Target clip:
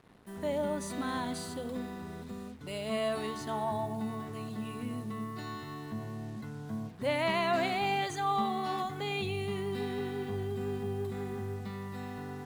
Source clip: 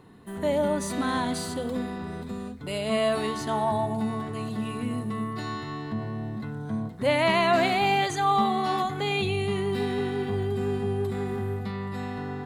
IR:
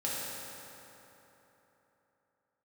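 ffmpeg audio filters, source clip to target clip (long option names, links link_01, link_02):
-af "acrusher=bits=7:mix=0:aa=0.5,volume=-7.5dB"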